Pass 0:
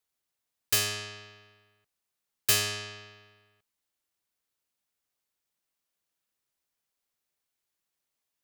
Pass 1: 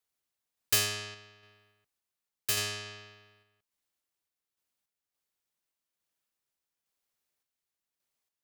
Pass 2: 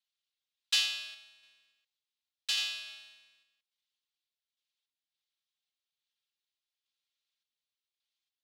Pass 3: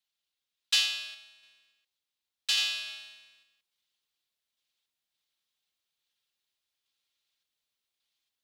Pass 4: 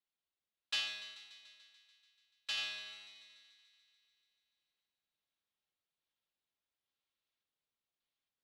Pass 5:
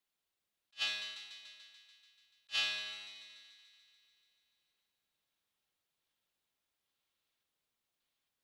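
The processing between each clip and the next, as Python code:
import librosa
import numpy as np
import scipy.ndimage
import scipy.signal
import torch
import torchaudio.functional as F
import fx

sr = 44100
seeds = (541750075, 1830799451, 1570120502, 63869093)

y1 = fx.tremolo_random(x, sr, seeds[0], hz=3.5, depth_pct=55)
y2 = fx.halfwave_hold(y1, sr)
y2 = fx.bandpass_q(y2, sr, hz=3600.0, q=2.5)
y2 = y2 + 0.78 * np.pad(y2, (int(3.7 * sr / 1000.0), 0))[:len(y2)]
y3 = fx.rider(y2, sr, range_db=10, speed_s=0.5)
y3 = y3 * 10.0 ** (6.0 / 20.0)
y4 = fx.lowpass(y3, sr, hz=1200.0, slope=6)
y4 = fx.echo_thinned(y4, sr, ms=145, feedback_pct=72, hz=380.0, wet_db=-14.0)
y4 = y4 * 10.0 ** (-1.5 / 20.0)
y5 = fx.attack_slew(y4, sr, db_per_s=500.0)
y5 = y5 * 10.0 ** (5.5 / 20.0)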